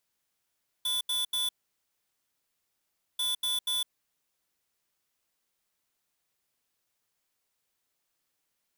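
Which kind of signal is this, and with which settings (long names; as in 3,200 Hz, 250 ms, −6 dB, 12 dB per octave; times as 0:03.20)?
beeps in groups square 3,470 Hz, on 0.16 s, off 0.08 s, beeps 3, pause 1.70 s, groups 2, −29.5 dBFS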